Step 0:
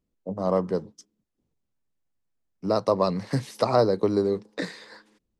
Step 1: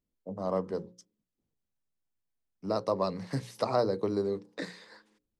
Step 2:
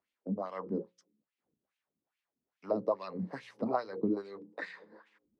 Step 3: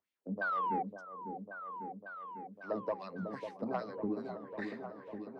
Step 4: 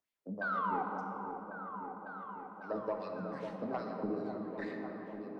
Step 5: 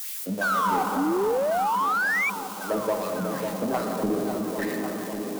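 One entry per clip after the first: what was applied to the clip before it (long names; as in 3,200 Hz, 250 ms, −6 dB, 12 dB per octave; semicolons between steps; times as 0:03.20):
mains-hum notches 60/120/180/240/300/360/420/480/540 Hz; level −6.5 dB
auto-filter band-pass sine 2.4 Hz 220–2,700 Hz; dynamic equaliser 240 Hz, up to +6 dB, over −49 dBFS, Q 0.91; multiband upward and downward compressor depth 40%; level +3.5 dB
sound drawn into the spectrogram fall, 0:00.41–0:00.83, 730–1,600 Hz −29 dBFS; soft clipping −20.5 dBFS, distortion −21 dB; on a send: echo whose low-pass opens from repeat to repeat 549 ms, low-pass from 750 Hz, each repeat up 1 octave, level −6 dB; on the sum: level −4 dB
rectangular room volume 210 cubic metres, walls hard, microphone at 0.36 metres; level −2 dB
spike at every zero crossing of −39.5 dBFS; sound drawn into the spectrogram rise, 0:00.96–0:02.30, 260–2,400 Hz −35 dBFS; in parallel at −4.5 dB: hard clipping −39.5 dBFS, distortion −7 dB; on the sum: level +8.5 dB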